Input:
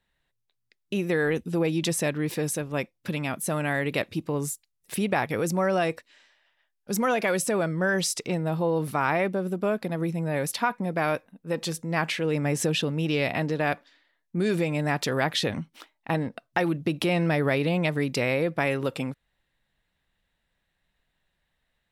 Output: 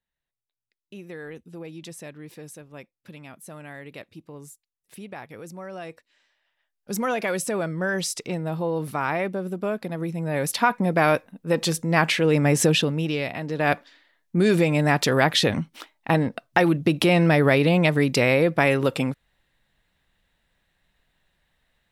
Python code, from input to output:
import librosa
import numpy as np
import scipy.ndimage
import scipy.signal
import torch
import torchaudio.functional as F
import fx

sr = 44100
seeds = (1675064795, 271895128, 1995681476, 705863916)

y = fx.gain(x, sr, db=fx.line((5.67, -13.5), (6.91, -1.0), (10.1, -1.0), (10.76, 6.5), (12.71, 6.5), (13.41, -5.0), (13.72, 6.0)))